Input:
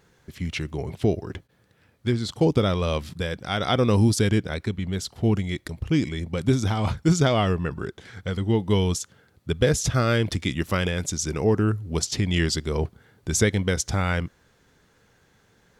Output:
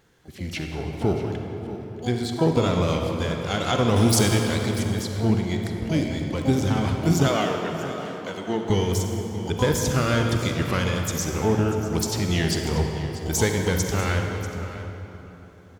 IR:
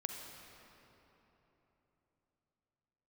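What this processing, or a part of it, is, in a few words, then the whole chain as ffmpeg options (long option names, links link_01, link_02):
shimmer-style reverb: -filter_complex "[0:a]asplit=2[link_01][link_02];[link_02]asetrate=88200,aresample=44100,atempo=0.5,volume=-10dB[link_03];[link_01][link_03]amix=inputs=2:normalize=0[link_04];[1:a]atrim=start_sample=2205[link_05];[link_04][link_05]afir=irnorm=-1:irlink=0,asettb=1/sr,asplit=3[link_06][link_07][link_08];[link_06]atrim=end=3.964[link_09];[link_07]atrim=start=3.96:end=4.84,asetpts=PTS-STARTPTS,afade=type=in:duration=0.004:curve=qsin,afade=type=out:start_time=0.876:duration=0.004:curve=qsin,highshelf=frequency=2800:gain=9[link_10];[link_08]atrim=start=4.836[link_11];[link_09][link_10]acrossfade=duration=0.004:curve1=hsin:curve2=qsin[link_12];[link_12][link_11]acrossfade=duration=0.004:curve1=qsin:curve2=hsin,asettb=1/sr,asplit=3[link_13][link_14][link_15];[link_13]atrim=end=7.284[link_16];[link_14]atrim=start=7.28:end=8.7,asetpts=PTS-STARTPTS,afade=type=in:duration=0.004:curve=qsin,afade=type=out:start_time=1.416:duration=0.004:curve=qsin,highpass=280[link_17];[link_15]atrim=start=8.696[link_18];[link_16][link_17]acrossfade=duration=0.004:curve1=hsin:curve2=qsin[link_19];[link_19][link_18]acrossfade=duration=0.004:curve1=qsin:curve2=hsin,aecho=1:1:640:0.178"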